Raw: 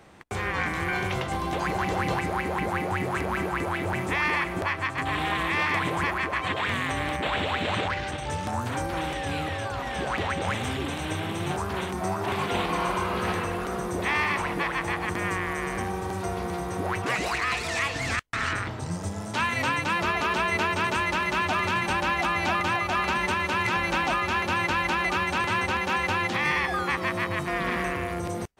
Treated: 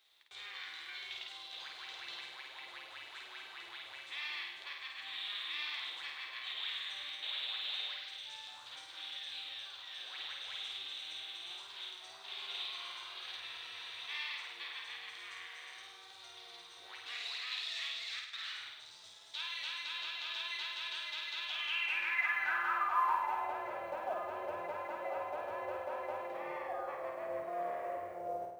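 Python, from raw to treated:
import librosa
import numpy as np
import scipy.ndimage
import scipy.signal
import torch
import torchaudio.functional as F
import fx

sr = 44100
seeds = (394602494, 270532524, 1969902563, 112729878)

y = fx.filter_sweep_bandpass(x, sr, from_hz=3700.0, to_hz=600.0, start_s=21.41, end_s=23.71, q=6.2)
y = fx.chorus_voices(y, sr, voices=2, hz=0.3, base_ms=12, depth_ms=2.7, mix_pct=25)
y = fx.quant_companded(y, sr, bits=8)
y = fx.peak_eq(y, sr, hz=210.0, db=-11.5, octaves=0.73)
y = fx.room_flutter(y, sr, wall_m=8.8, rt60_s=0.83)
y = fx.spec_freeze(y, sr, seeds[0], at_s=13.42, hold_s=0.66)
y = y * 10.0 ** (1.5 / 20.0)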